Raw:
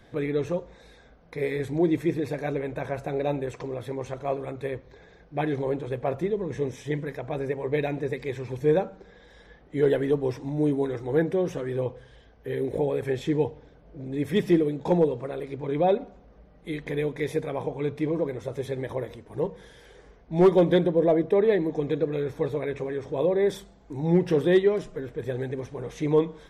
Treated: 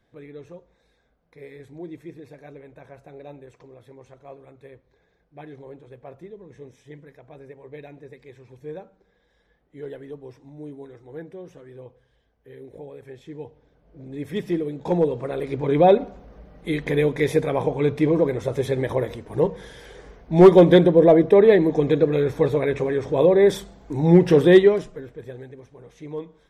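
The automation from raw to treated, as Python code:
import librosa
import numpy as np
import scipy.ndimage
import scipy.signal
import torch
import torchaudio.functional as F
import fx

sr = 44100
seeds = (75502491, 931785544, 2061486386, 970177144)

y = fx.gain(x, sr, db=fx.line((13.27, -14.0), (14.0, -4.0), (14.56, -4.0), (15.55, 7.5), (24.63, 7.5), (24.97, -2.0), (25.57, -11.0)))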